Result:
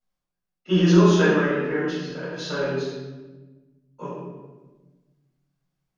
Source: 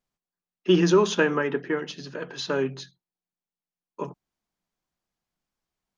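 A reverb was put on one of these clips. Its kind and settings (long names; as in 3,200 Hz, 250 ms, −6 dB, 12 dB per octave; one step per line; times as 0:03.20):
rectangular room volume 840 cubic metres, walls mixed, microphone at 7.1 metres
level −11 dB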